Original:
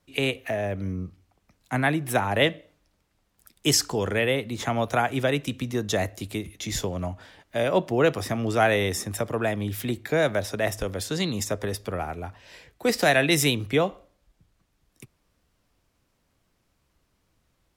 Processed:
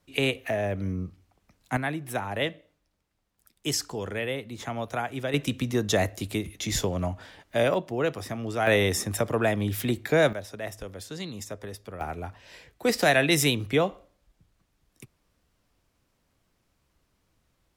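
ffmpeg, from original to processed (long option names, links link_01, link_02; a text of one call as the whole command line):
ffmpeg -i in.wav -af "asetnsamples=nb_out_samples=441:pad=0,asendcmd='1.77 volume volume -7dB;5.34 volume volume 1.5dB;7.74 volume volume -6dB;8.67 volume volume 1.5dB;10.33 volume volume -9.5dB;12.01 volume volume -1dB',volume=0dB" out.wav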